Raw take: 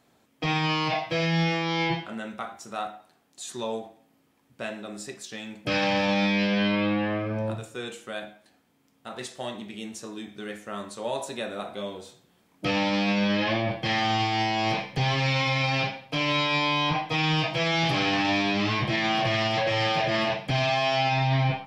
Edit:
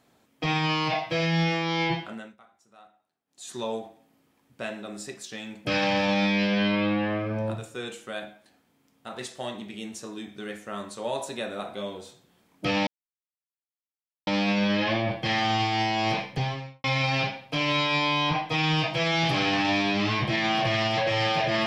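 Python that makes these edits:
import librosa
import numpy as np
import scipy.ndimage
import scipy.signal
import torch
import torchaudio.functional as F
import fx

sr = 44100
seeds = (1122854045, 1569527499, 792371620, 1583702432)

y = fx.studio_fade_out(x, sr, start_s=14.84, length_s=0.6)
y = fx.edit(y, sr, fx.fade_down_up(start_s=2.06, length_s=1.5, db=-21.0, fade_s=0.3),
    fx.insert_silence(at_s=12.87, length_s=1.4), tone=tone)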